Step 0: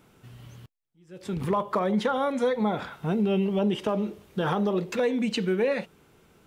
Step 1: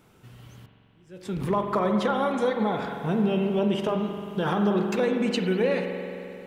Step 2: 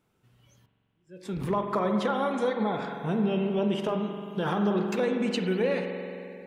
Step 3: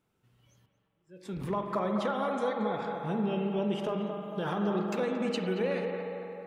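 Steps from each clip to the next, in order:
spring reverb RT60 2.9 s, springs 44 ms, chirp 65 ms, DRR 4 dB
noise reduction from a noise print of the clip's start 12 dB; level −2.5 dB
feedback echo with a band-pass in the loop 227 ms, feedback 67%, band-pass 760 Hz, level −5 dB; level −4.5 dB

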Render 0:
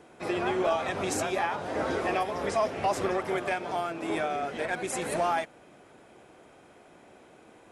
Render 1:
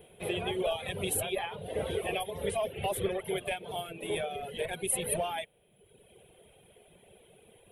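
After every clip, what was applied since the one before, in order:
low-shelf EQ 77 Hz +10 dB
reverb reduction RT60 1.2 s
drawn EQ curve 190 Hz 0 dB, 290 Hz −15 dB, 420 Hz +3 dB, 1,300 Hz −15 dB, 3,300 Hz +7 dB, 5,000 Hz −19 dB, 7,100 Hz −13 dB, 10,000 Hz +13 dB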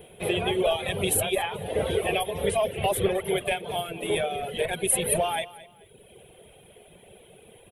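repeating echo 218 ms, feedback 28%, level −18 dB
level +7 dB

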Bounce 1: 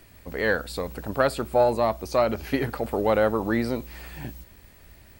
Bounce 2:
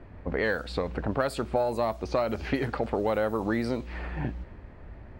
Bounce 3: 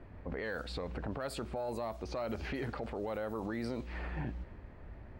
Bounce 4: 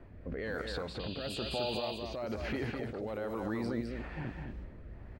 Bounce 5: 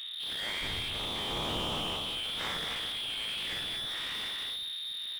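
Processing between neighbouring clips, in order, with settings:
low-pass that shuts in the quiet parts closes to 1,100 Hz, open at −18.5 dBFS; downward compressor 4 to 1, threshold −33 dBFS, peak gain reduction 15 dB; level +7 dB
brickwall limiter −24.5 dBFS, peak gain reduction 11.5 dB; level −4.5 dB
sound drawn into the spectrogram noise, 0:00.99–0:01.95, 2,400–4,900 Hz −44 dBFS; rotating-speaker cabinet horn 1.1 Hz; single-tap delay 209 ms −4.5 dB; level +2 dB
every bin's largest magnitude spread in time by 120 ms; voice inversion scrambler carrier 3,700 Hz; slew-rate limiting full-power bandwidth 30 Hz; level +5.5 dB

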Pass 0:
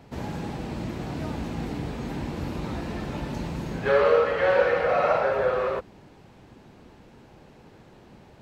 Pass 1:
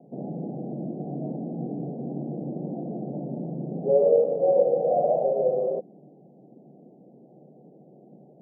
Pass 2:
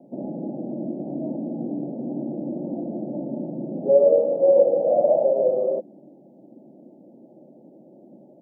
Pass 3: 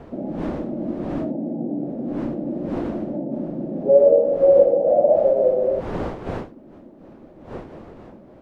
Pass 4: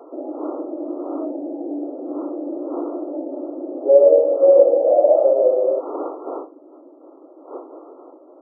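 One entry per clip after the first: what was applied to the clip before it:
Chebyshev band-pass filter 140–740 Hz, order 5; level +1.5 dB
comb filter 3.4 ms, depth 59%; level +2 dB
wind on the microphone 520 Hz −39 dBFS; level +2.5 dB
linear-phase brick-wall band-pass 270–1,400 Hz; level +2 dB

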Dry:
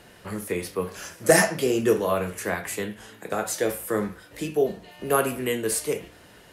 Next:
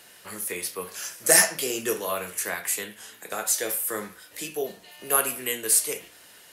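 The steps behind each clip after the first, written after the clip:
spectral tilt +3.5 dB per octave
level −3.5 dB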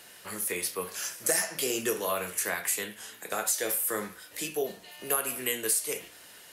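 downward compressor 6 to 1, threshold −24 dBFS, peak gain reduction 11.5 dB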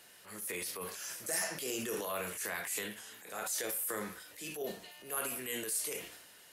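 transient designer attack −8 dB, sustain +7 dB
level −7 dB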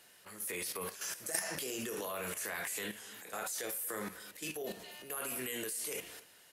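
output level in coarse steps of 11 dB
single-tap delay 236 ms −20.5 dB
level +4.5 dB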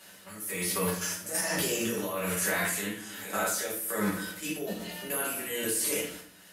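amplitude tremolo 1.2 Hz, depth 55%
convolution reverb RT60 0.55 s, pre-delay 5 ms, DRR −5.5 dB
level +4.5 dB

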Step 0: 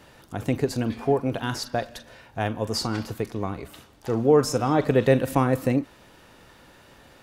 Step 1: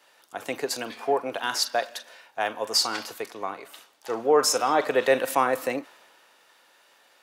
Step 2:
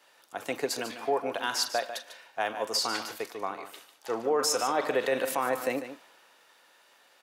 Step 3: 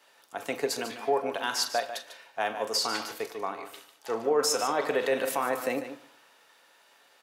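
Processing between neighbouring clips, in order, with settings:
high-pass filter 630 Hz 12 dB per octave; in parallel at −2 dB: brickwall limiter −21 dBFS, peak gain reduction 10 dB; on the sum: multiband upward and downward expander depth 40%
brickwall limiter −15.5 dBFS, peak gain reduction 7.5 dB; single-tap delay 147 ms −11 dB; level −2 dB
convolution reverb, pre-delay 4 ms, DRR 10.5 dB

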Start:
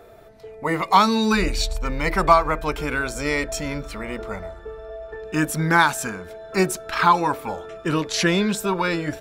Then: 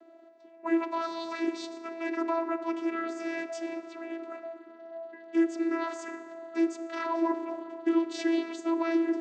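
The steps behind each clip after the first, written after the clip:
brickwall limiter −13.5 dBFS, peak gain reduction 10 dB
feedback delay network reverb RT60 2.8 s, high-frequency decay 0.45×, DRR 9.5 dB
channel vocoder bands 16, saw 331 Hz
level −5.5 dB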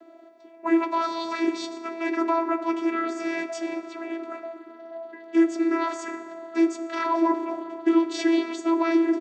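double-tracking delay 16 ms −10 dB
level +6 dB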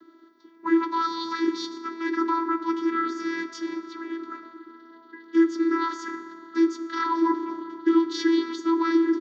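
phaser with its sweep stopped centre 2,500 Hz, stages 6
level +3 dB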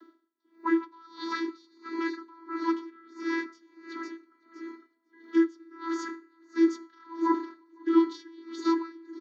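Chebyshev high-pass filter 210 Hz, order 8
repeating echo 505 ms, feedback 42%, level −10.5 dB
tremolo with a sine in dB 1.5 Hz, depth 28 dB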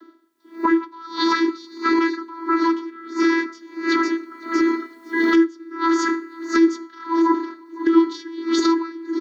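camcorder AGC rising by 29 dB per second
level +6.5 dB

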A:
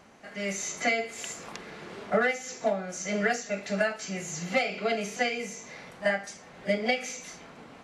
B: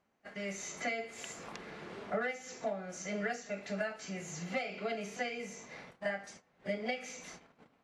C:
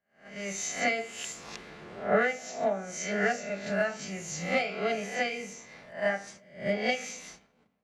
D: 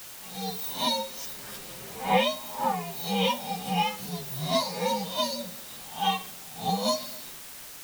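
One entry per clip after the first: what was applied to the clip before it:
noise gate −45 dBFS, range −19 dB; high-shelf EQ 4,900 Hz −6.5 dB; downward compressor 1.5 to 1, threshold −40 dBFS, peak gain reduction 7 dB; level −3 dB
peak hold with a rise ahead of every peak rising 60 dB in 0.64 s; on a send at −21.5 dB: convolution reverb RT60 3.6 s, pre-delay 3 ms; on the sum: multiband upward and downward expander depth 70%; level +5 dB
partials spread apart or drawn together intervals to 129%; in parallel at −10.5 dB: bit-depth reduction 6 bits, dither triangular; on the sum: level +3 dB

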